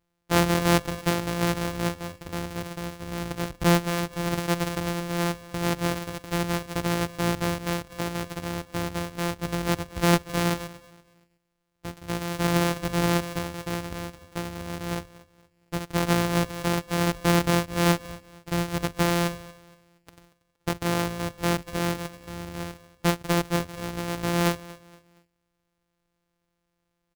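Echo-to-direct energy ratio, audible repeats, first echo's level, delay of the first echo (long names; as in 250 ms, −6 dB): −19.0 dB, 2, −19.5 dB, 234 ms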